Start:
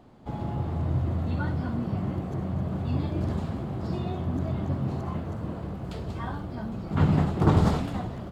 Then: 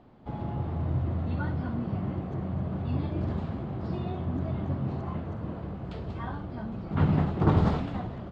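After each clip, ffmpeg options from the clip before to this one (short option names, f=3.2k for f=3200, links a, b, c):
-af "lowpass=3.7k,volume=-2dB"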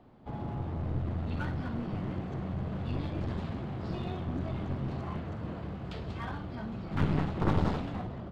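-filter_complex "[0:a]acrossover=split=280|1600[a][b][c];[c]dynaudnorm=f=200:g=11:m=6.5dB[d];[a][b][d]amix=inputs=3:normalize=0,aeval=exprs='clip(val(0),-1,0.0237)':c=same,volume=-2dB"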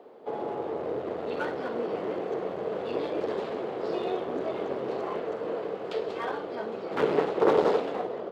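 -af "highpass=f=450:t=q:w=4.9,volume=5dB"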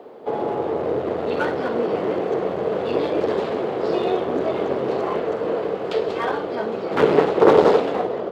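-af "lowshelf=f=110:g=7,volume=8.5dB"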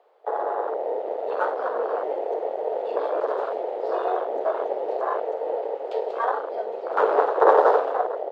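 -af "afwtdn=0.0794,highpass=f=550:w=0.5412,highpass=f=550:w=1.3066,volume=2.5dB"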